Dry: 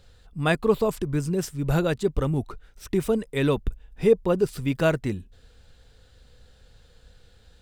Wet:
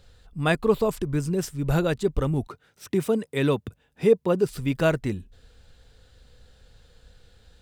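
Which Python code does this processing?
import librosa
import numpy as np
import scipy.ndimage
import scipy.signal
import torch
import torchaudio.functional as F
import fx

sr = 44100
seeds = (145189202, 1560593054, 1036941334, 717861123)

y = fx.highpass(x, sr, hz=98.0, slope=24, at=(2.47, 4.49))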